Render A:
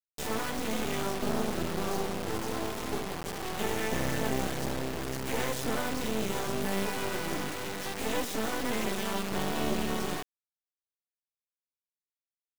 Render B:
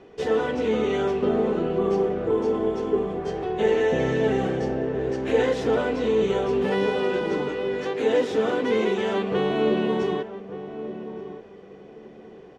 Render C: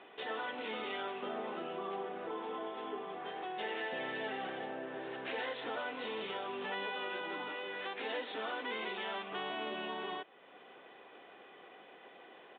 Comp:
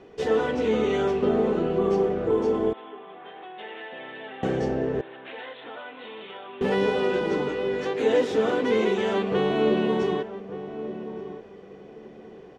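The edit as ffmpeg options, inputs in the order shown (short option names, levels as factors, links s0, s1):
-filter_complex "[2:a]asplit=2[s0][s1];[1:a]asplit=3[s2][s3][s4];[s2]atrim=end=2.732[s5];[s0]atrim=start=2.728:end=4.432[s6];[s3]atrim=start=4.428:end=5.012[s7];[s1]atrim=start=5.008:end=6.612[s8];[s4]atrim=start=6.608[s9];[s5][s6]acrossfade=d=0.004:c1=hsin:c2=hsin[s10];[s10][s7]acrossfade=d=0.004:c1=hsin:c2=hsin[s11];[s11][s8]acrossfade=d=0.004:c1=hsin:c2=hsin[s12];[s12][s9]acrossfade=d=0.004:c1=hsin:c2=hsin"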